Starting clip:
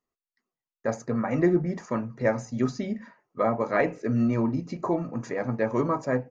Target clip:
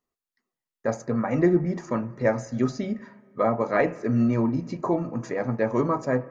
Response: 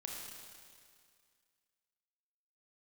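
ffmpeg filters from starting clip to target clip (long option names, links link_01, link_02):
-filter_complex "[0:a]asplit=2[link_01][link_02];[link_02]lowpass=frequency=2400:width=0.5412,lowpass=frequency=2400:width=1.3066[link_03];[1:a]atrim=start_sample=2205[link_04];[link_03][link_04]afir=irnorm=-1:irlink=0,volume=-14.5dB[link_05];[link_01][link_05]amix=inputs=2:normalize=0,volume=1dB"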